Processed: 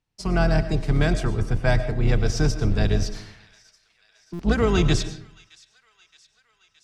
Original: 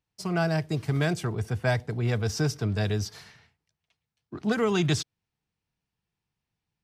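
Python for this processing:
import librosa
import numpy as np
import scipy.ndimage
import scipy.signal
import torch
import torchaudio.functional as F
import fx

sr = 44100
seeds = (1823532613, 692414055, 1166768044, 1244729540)

y = fx.octave_divider(x, sr, octaves=2, level_db=2.0)
y = scipy.signal.sosfilt(scipy.signal.butter(2, 8800.0, 'lowpass', fs=sr, output='sos'), y)
y = fx.echo_wet_highpass(y, sr, ms=620, feedback_pct=65, hz=1900.0, wet_db=-21.5)
y = fx.rev_freeverb(y, sr, rt60_s=0.67, hf_ratio=0.55, predelay_ms=70, drr_db=11.0)
y = fx.buffer_glitch(y, sr, at_s=(4.33,), block=256, repeats=10)
y = y * librosa.db_to_amplitude(3.0)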